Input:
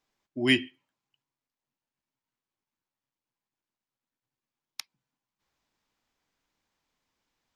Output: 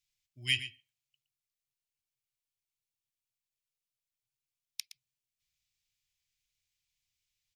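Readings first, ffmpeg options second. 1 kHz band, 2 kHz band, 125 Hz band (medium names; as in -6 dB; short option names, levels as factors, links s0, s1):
under -25 dB, -6.5 dB, -6.0 dB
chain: -filter_complex "[0:a]firequalizer=gain_entry='entry(120,0);entry(240,-25);entry(890,-26);entry(2300,1);entry(8200,6)':delay=0.05:min_phase=1,asplit=2[s0][s1];[s1]adelay=116.6,volume=0.251,highshelf=f=4000:g=-2.62[s2];[s0][s2]amix=inputs=2:normalize=0,volume=0.596"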